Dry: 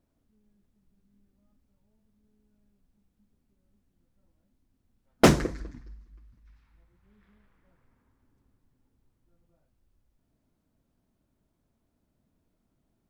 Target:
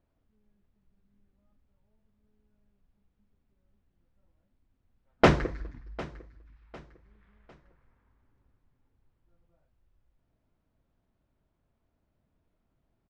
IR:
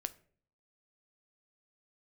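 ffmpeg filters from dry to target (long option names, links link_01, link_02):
-filter_complex "[0:a]lowpass=3100,equalizer=frequency=240:width_type=o:width=1.3:gain=-6.5,asplit=2[link_01][link_02];[link_02]aecho=0:1:752|1504|2256:0.112|0.0393|0.0137[link_03];[link_01][link_03]amix=inputs=2:normalize=0,volume=1dB"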